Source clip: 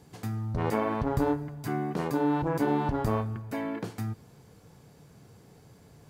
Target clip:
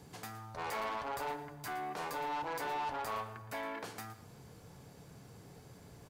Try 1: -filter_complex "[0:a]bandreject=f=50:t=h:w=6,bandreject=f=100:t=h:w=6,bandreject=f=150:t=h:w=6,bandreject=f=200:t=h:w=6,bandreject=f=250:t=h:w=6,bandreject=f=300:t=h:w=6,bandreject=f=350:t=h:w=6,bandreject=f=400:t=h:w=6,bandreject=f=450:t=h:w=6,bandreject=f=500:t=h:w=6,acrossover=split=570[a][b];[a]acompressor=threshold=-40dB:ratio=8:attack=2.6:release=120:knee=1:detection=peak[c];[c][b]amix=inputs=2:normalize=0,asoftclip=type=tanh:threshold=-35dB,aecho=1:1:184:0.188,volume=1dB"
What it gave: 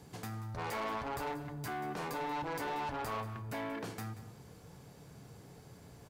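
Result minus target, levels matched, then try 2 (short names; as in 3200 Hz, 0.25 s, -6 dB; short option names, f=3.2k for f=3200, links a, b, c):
echo 68 ms late; compressor: peak gain reduction -9.5 dB
-filter_complex "[0:a]bandreject=f=50:t=h:w=6,bandreject=f=100:t=h:w=6,bandreject=f=150:t=h:w=6,bandreject=f=200:t=h:w=6,bandreject=f=250:t=h:w=6,bandreject=f=300:t=h:w=6,bandreject=f=350:t=h:w=6,bandreject=f=400:t=h:w=6,bandreject=f=450:t=h:w=6,bandreject=f=500:t=h:w=6,acrossover=split=570[a][b];[a]acompressor=threshold=-51dB:ratio=8:attack=2.6:release=120:knee=1:detection=peak[c];[c][b]amix=inputs=2:normalize=0,asoftclip=type=tanh:threshold=-35dB,aecho=1:1:116:0.188,volume=1dB"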